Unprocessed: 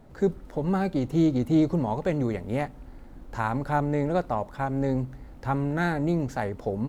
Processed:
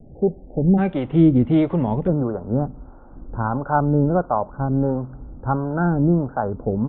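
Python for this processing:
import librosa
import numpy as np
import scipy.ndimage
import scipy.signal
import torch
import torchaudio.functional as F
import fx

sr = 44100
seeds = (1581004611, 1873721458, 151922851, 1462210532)

y = fx.steep_lowpass(x, sr, hz=fx.steps((0.0, 810.0), (0.77, 3500.0), (2.06, 1500.0)), slope=96)
y = fx.dynamic_eq(y, sr, hz=180.0, q=1.2, threshold_db=-36.0, ratio=4.0, max_db=3)
y = fx.harmonic_tremolo(y, sr, hz=1.5, depth_pct=70, crossover_hz=450.0)
y = y * 10.0 ** (8.5 / 20.0)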